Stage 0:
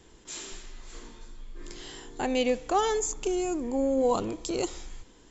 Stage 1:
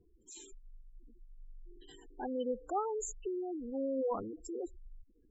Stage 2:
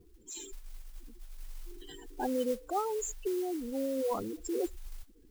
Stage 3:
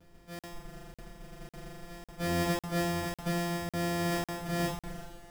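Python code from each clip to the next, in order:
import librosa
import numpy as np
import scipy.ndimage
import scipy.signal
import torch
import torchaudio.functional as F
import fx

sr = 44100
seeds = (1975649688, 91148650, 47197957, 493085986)

y1 = fx.spec_gate(x, sr, threshold_db=-10, keep='strong')
y1 = fx.dynamic_eq(y1, sr, hz=2300.0, q=1.4, threshold_db=-49.0, ratio=4.0, max_db=8)
y1 = y1 * 10.0 ** (-9.0 / 20.0)
y2 = fx.rider(y1, sr, range_db=4, speed_s=0.5)
y2 = fx.mod_noise(y2, sr, seeds[0], snr_db=18)
y2 = y2 * 10.0 ** (3.5 / 20.0)
y3 = np.r_[np.sort(y2[:len(y2) // 256 * 256].reshape(-1, 256), axis=1).ravel(), y2[len(y2) // 256 * 256:]]
y3 = fx.rev_double_slope(y3, sr, seeds[1], early_s=0.53, late_s=4.2, knee_db=-21, drr_db=-10.0)
y3 = fx.buffer_crackle(y3, sr, first_s=0.39, period_s=0.55, block=2048, kind='zero')
y3 = y3 * 10.0 ** (-7.0 / 20.0)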